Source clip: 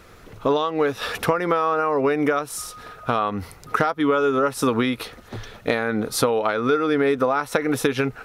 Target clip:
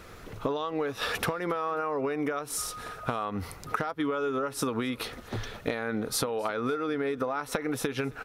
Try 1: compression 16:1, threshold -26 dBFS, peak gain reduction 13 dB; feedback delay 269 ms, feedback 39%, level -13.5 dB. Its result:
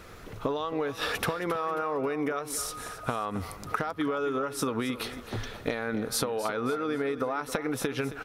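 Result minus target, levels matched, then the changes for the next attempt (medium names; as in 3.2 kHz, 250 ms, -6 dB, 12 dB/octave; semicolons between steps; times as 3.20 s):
echo-to-direct +11 dB
change: feedback delay 269 ms, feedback 39%, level -24.5 dB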